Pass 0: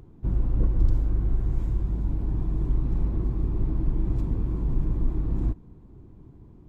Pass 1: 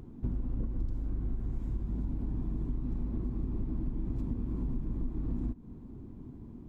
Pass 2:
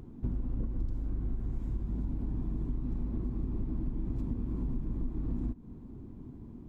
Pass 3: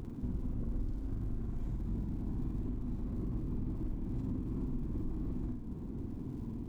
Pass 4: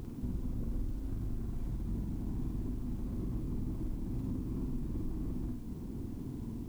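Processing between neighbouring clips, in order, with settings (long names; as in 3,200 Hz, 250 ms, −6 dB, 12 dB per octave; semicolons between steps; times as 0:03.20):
parametric band 240 Hz +11.5 dB 0.39 octaves; downward compressor 6 to 1, threshold −30 dBFS, peak gain reduction 15.5 dB
no processing that can be heard
brickwall limiter −34.5 dBFS, peak gain reduction 11.5 dB; surface crackle 140 per second −61 dBFS; flutter between parallel walls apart 8.4 metres, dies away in 0.59 s; level +4 dB
background noise white −68 dBFS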